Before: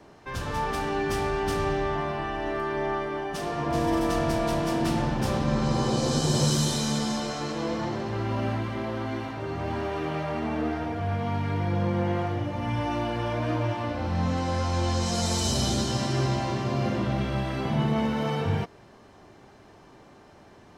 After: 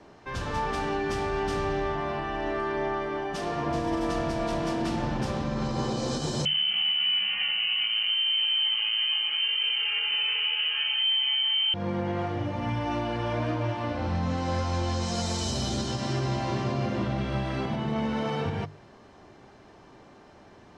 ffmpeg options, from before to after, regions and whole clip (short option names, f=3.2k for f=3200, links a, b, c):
-filter_complex "[0:a]asettb=1/sr,asplit=3[a][b][c];[a]atrim=end=6.454[d];[b]atrim=start=6.45:end=11.74,asetpts=PTS-STARTPTS,afade=t=in:d=0.004:c=qsin,afade=t=out:st=5.286:d=0.004:c=qsin,equalizer=f=86:w=0.35:g=10.5,asplit=2[e][f];[f]adelay=18,volume=-2dB[g];[e][g]amix=inputs=2:normalize=0,atrim=end_sample=233289,lowpass=f=2.7k:t=q:w=0.5098,lowpass=f=2.7k:t=q:w=0.6013,lowpass=f=2.7k:t=q:w=0.9,lowpass=f=2.7k:t=q:w=2.563,afreqshift=-3200[h];[c]atrim=start=11.736[i];[d][h]acrossfade=d=0.004:c1=hsin:c2=qsin[j];[j][i]acrossfade=d=0.004:c1=qsin:c2=hsin,alimiter=limit=-19dB:level=0:latency=1:release=168,lowpass=7.4k,bandreject=f=50:t=h:w=6,bandreject=f=100:t=h:w=6,bandreject=f=150:t=h:w=6"